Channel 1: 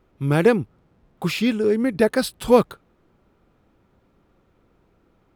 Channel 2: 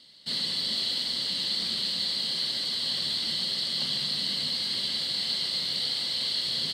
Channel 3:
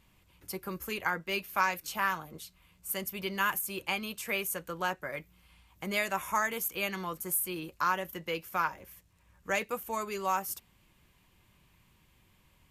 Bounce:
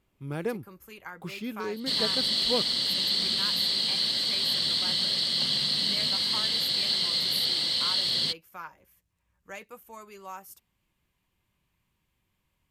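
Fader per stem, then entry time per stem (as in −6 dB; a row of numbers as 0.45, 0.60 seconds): −15.0, +2.5, −11.0 decibels; 0.00, 1.60, 0.00 seconds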